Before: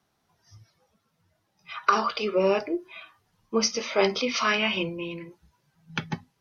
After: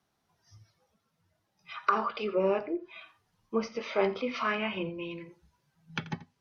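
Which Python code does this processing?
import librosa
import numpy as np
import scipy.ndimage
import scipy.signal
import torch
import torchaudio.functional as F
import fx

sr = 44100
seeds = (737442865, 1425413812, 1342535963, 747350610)

y = fx.env_lowpass_down(x, sr, base_hz=2000.0, full_db=-23.0)
y = y + 10.0 ** (-17.5 / 20.0) * np.pad(y, (int(85 * sr / 1000.0), 0))[:len(y)]
y = y * 10.0 ** (-4.5 / 20.0)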